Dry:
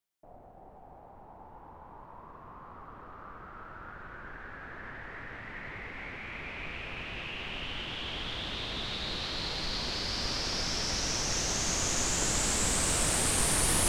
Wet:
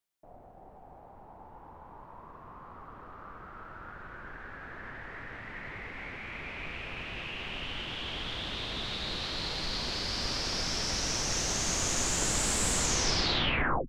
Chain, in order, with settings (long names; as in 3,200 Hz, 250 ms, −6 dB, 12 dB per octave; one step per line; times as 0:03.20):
turntable brake at the end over 1.20 s